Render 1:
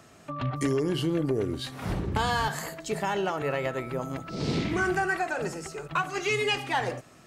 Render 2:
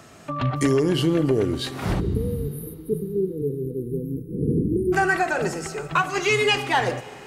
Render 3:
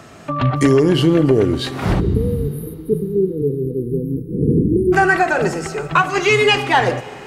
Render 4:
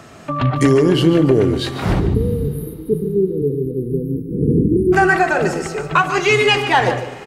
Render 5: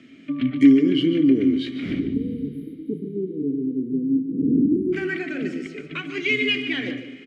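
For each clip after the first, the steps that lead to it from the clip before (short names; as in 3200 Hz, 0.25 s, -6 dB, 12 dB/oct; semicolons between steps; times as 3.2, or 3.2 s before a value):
spectral delete 2–4.93, 510–9400 Hz; Schroeder reverb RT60 3.7 s, combs from 33 ms, DRR 17 dB; gain +6.5 dB
high shelf 5300 Hz -7 dB; gain +7 dB
outdoor echo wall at 25 m, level -11 dB
vowel filter i; gain +5 dB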